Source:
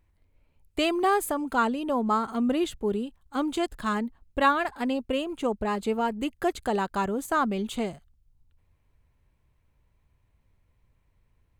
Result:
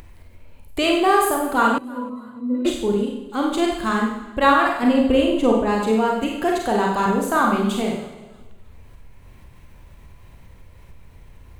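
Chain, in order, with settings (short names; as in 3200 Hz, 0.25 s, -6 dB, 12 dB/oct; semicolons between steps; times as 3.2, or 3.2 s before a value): 4.83–5.52 low shelf 340 Hz +9.5 dB; Schroeder reverb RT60 0.76 s, combs from 32 ms, DRR -1 dB; upward compressor, threshold -33 dBFS; 1.78–2.65 octave resonator B, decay 0.27 s; warbling echo 0.315 s, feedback 34%, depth 56 cents, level -23.5 dB; gain +4 dB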